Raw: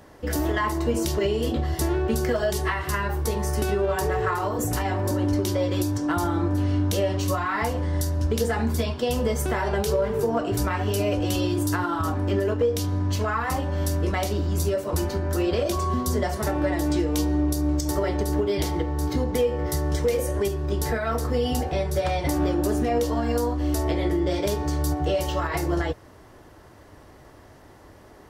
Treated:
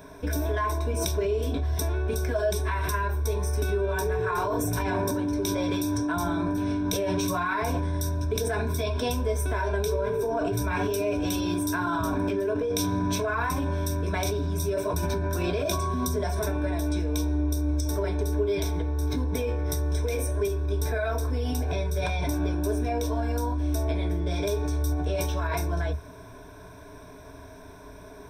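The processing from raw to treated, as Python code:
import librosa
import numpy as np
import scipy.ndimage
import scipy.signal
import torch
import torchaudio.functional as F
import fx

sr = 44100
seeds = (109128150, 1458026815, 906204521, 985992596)

p1 = fx.ripple_eq(x, sr, per_octave=1.6, db=16)
p2 = fx.over_compress(p1, sr, threshold_db=-26.0, ratio=-0.5)
p3 = p1 + (p2 * librosa.db_to_amplitude(-1.0))
y = p3 * librosa.db_to_amplitude(-8.5)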